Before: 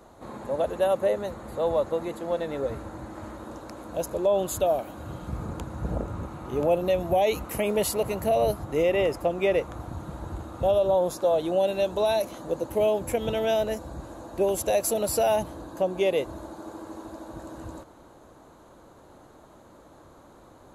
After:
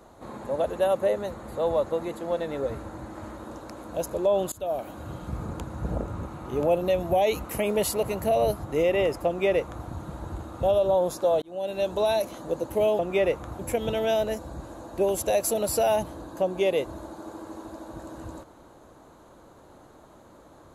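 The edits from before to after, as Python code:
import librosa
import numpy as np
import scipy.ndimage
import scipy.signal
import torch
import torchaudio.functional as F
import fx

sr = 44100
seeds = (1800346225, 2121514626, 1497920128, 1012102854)

y = fx.edit(x, sr, fx.fade_in_from(start_s=4.52, length_s=0.35, floor_db=-23.0),
    fx.duplicate(start_s=9.27, length_s=0.6, to_s=12.99),
    fx.fade_in_span(start_s=11.42, length_s=0.48), tone=tone)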